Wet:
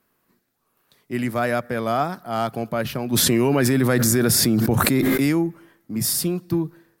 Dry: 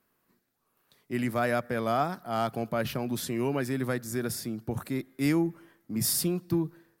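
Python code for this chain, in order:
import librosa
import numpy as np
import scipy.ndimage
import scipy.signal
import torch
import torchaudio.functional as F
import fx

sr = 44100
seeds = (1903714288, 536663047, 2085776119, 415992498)

y = fx.env_flatten(x, sr, amount_pct=100, at=(3.12, 5.25), fade=0.02)
y = y * librosa.db_to_amplitude(5.0)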